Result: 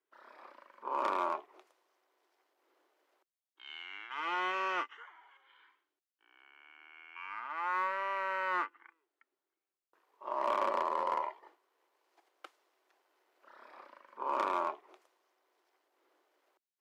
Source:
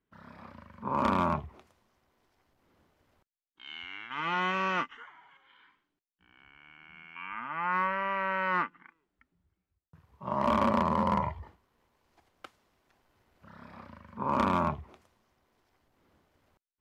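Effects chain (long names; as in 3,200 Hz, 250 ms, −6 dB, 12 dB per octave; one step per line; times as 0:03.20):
elliptic high-pass filter 340 Hz, stop band 60 dB
in parallel at −10 dB: soft clipping −31.5 dBFS, distortion −7 dB
on the sum: level −5 dB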